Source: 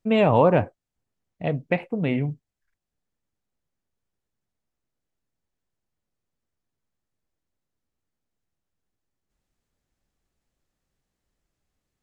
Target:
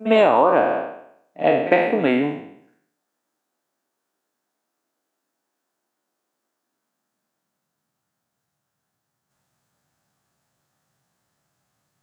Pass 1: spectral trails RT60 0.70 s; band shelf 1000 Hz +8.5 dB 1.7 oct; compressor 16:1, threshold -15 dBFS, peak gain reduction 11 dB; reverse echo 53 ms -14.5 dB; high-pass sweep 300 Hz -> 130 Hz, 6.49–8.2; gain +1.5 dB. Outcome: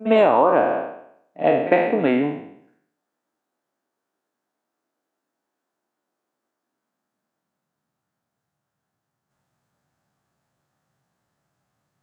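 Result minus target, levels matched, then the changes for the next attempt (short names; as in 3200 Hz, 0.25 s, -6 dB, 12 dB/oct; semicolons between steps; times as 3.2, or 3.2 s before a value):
8000 Hz band -6.5 dB
add after compressor: high shelf 2900 Hz +8 dB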